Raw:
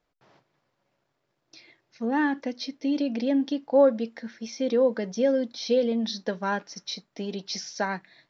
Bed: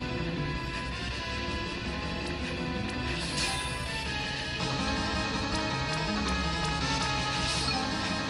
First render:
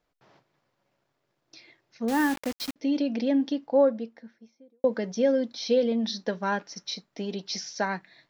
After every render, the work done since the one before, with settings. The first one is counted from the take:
0:02.08–0:02.76: bit-depth reduction 6 bits, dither none
0:03.38–0:04.84: fade out and dull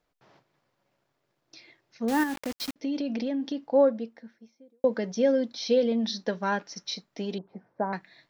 0:02.23–0:03.59: downward compressor, threshold −26 dBFS
0:07.38–0:07.93: low-pass filter 1,100 Hz 24 dB per octave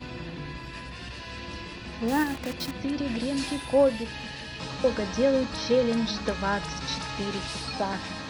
mix in bed −5 dB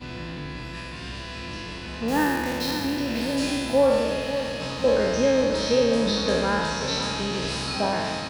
peak hold with a decay on every bin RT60 1.83 s
repeating echo 538 ms, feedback 50%, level −10.5 dB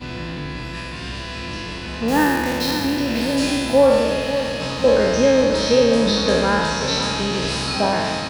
level +5.5 dB

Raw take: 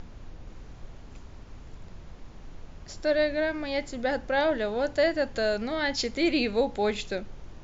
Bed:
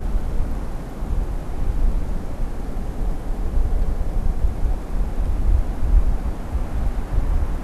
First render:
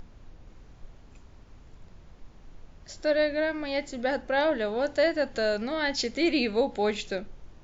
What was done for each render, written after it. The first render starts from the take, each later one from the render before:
noise reduction from a noise print 6 dB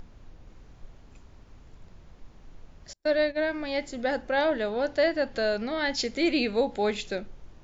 0:02.93–0:03.45: noise gate −32 dBFS, range −37 dB
0:04.69–0:05.78: low-pass filter 6,200 Hz 24 dB per octave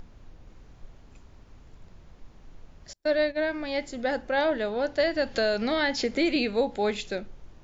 0:05.00–0:06.36: multiband upward and downward compressor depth 100%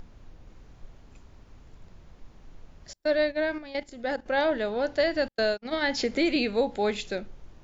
0:03.58–0:04.26: output level in coarse steps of 14 dB
0:05.28–0:05.86: noise gate −26 dBFS, range −49 dB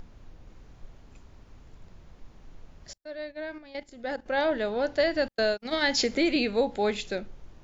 0:02.98–0:04.65: fade in, from −19.5 dB
0:05.60–0:06.15: high-shelf EQ 4,400 Hz +10.5 dB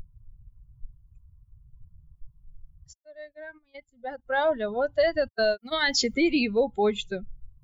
spectral dynamics exaggerated over time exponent 2
in parallel at +2.5 dB: brickwall limiter −25.5 dBFS, peak gain reduction 10 dB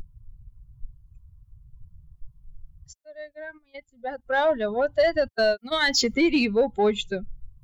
pitch vibrato 0.44 Hz 10 cents
in parallel at −6 dB: soft clipping −23 dBFS, distortion −12 dB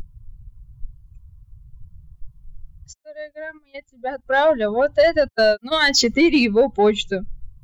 level +5.5 dB

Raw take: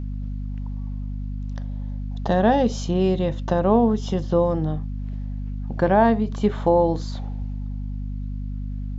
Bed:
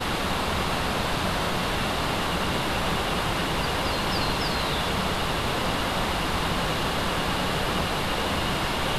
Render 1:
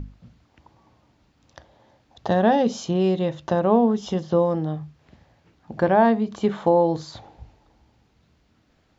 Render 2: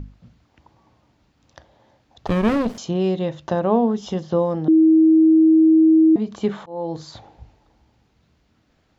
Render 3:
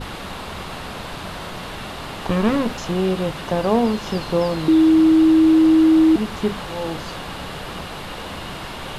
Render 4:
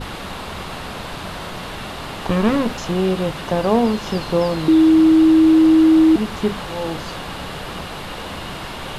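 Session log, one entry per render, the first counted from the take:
mains-hum notches 50/100/150/200/250 Hz
0:02.27–0:02.78: windowed peak hold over 33 samples; 0:04.68–0:06.16: beep over 319 Hz −9.5 dBFS; 0:06.66–0:07.08: fade in
mix in bed −5.5 dB
level +1.5 dB

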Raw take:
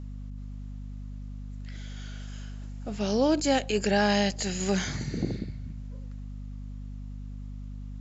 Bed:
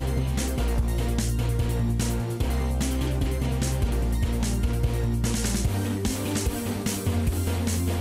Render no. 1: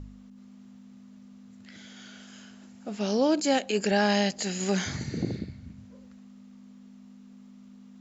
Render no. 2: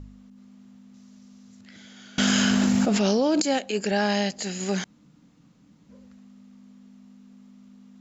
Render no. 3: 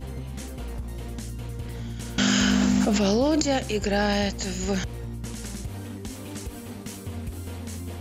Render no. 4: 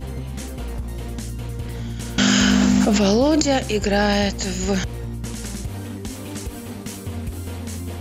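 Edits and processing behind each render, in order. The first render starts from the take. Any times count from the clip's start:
hum removal 50 Hz, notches 3
0:00.94–0:01.61: parametric band 5,800 Hz +10 dB 1.2 octaves; 0:02.18–0:03.42: envelope flattener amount 100%; 0:04.84–0:05.89: fill with room tone
mix in bed −9.5 dB
level +5 dB

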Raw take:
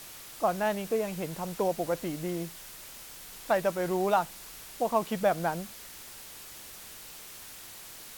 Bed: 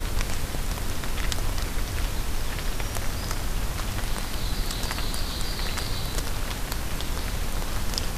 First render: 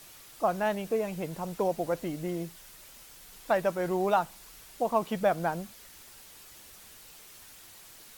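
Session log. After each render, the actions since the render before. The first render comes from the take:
broadband denoise 6 dB, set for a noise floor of −47 dBFS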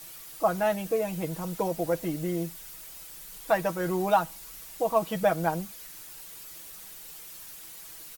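high-shelf EQ 9,100 Hz +8.5 dB
comb filter 6.2 ms, depth 69%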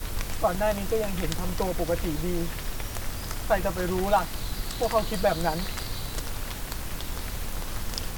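mix in bed −4.5 dB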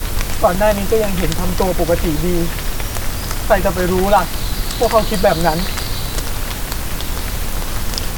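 level +11.5 dB
brickwall limiter −1 dBFS, peak gain reduction 3 dB

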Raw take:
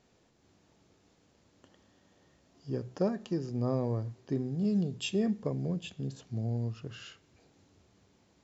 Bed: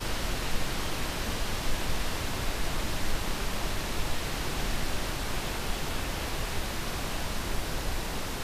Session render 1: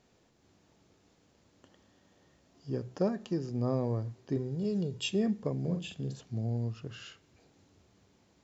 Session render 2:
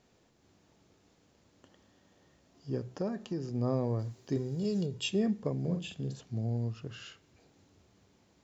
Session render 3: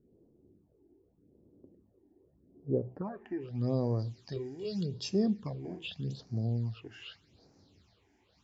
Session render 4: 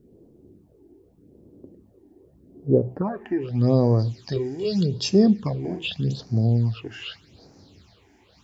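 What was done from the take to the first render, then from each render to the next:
0:04.36–0:05.08: comb filter 2.1 ms, depth 50%; 0:05.60–0:06.20: double-tracking delay 46 ms −6 dB
0:02.83–0:03.49: downward compressor 2 to 1, threshold −32 dBFS; 0:03.99–0:04.86: high-shelf EQ 4,000 Hz +11 dB
all-pass phaser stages 8, 0.83 Hz, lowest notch 150–3,300 Hz; low-pass filter sweep 380 Hz → 4,600 Hz, 0:02.60–0:03.68
level +12 dB

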